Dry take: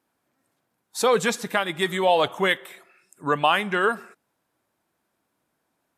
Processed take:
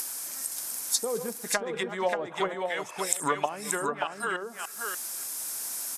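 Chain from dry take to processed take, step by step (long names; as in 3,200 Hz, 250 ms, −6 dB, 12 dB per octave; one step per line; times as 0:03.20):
delay that plays each chunk backwards 291 ms, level −12 dB
spectral tilt +4 dB per octave
upward compression, threshold −22 dBFS
treble cut that deepens with the level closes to 390 Hz, closed at −16.5 dBFS
flat-topped bell 8,000 Hz +12 dB
on a send: single-tap delay 583 ms −4.5 dB
on the sum: level −1.5 dB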